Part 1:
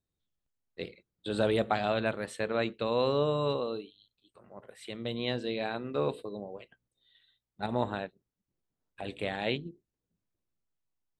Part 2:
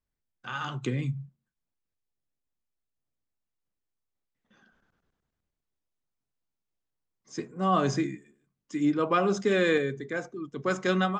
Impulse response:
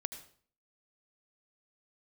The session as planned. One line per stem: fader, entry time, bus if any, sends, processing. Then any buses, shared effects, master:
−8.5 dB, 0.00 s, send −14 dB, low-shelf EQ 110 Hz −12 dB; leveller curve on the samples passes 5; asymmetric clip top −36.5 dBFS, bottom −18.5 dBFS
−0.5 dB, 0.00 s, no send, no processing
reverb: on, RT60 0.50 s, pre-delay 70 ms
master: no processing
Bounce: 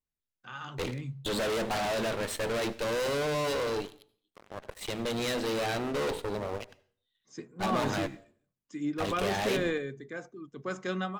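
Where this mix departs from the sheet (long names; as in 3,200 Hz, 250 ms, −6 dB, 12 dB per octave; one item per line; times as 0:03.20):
stem 1: send −14 dB → −6 dB
stem 2 −0.5 dB → −7.5 dB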